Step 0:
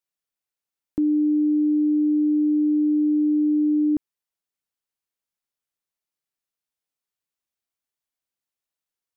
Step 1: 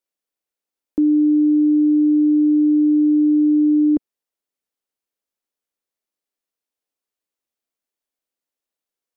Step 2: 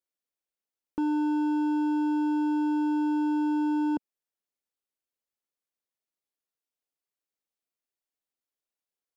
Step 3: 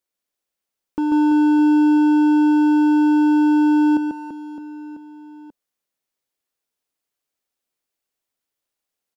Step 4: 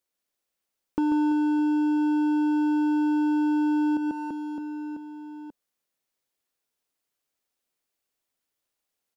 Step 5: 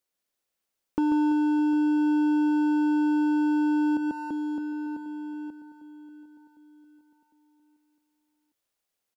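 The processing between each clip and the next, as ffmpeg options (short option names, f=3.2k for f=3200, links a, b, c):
-af "equalizer=f=125:t=o:w=1:g=-11,equalizer=f=250:t=o:w=1:g=6,equalizer=f=500:t=o:w=1:g=6"
-af "asoftclip=type=hard:threshold=-18.5dB,volume=-6.5dB"
-af "aecho=1:1:140|336|610.4|994.6|1532:0.631|0.398|0.251|0.158|0.1,volume=6.5dB"
-af "acompressor=threshold=-23dB:ratio=6"
-af "aecho=1:1:754|1508|2262|3016:0.141|0.0664|0.0312|0.0147"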